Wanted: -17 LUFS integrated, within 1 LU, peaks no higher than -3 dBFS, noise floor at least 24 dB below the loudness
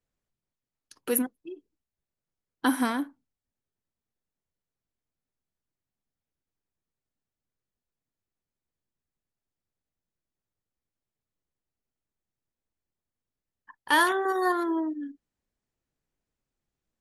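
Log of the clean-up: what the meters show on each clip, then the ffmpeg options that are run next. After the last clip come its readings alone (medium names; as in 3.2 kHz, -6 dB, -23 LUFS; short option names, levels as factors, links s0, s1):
loudness -27.0 LUFS; peak level -8.5 dBFS; loudness target -17.0 LUFS
-> -af "volume=3.16,alimiter=limit=0.708:level=0:latency=1"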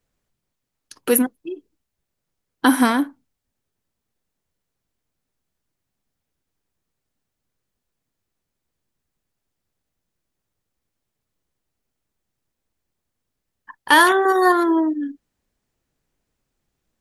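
loudness -17.5 LUFS; peak level -3.0 dBFS; noise floor -81 dBFS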